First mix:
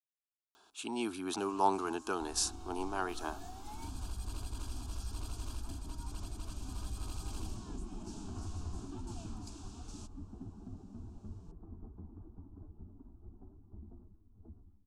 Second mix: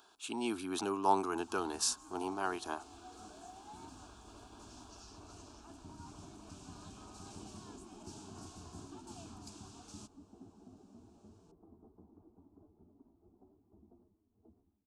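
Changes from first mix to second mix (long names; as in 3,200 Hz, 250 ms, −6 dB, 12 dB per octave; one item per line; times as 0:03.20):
speech: entry −0.55 s
second sound: add resonant band-pass 550 Hz, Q 1.1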